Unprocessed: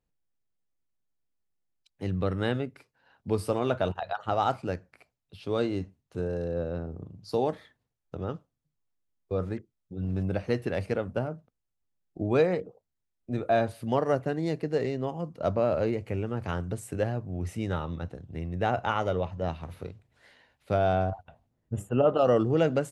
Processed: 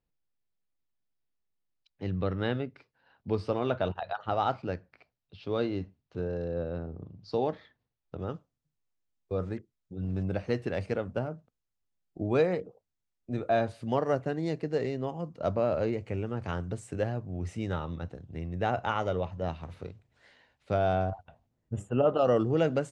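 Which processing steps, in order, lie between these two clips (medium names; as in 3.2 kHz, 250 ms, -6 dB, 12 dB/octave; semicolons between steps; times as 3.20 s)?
low-pass 5.2 kHz 24 dB/octave, from 8.19 s 8.3 kHz; trim -2 dB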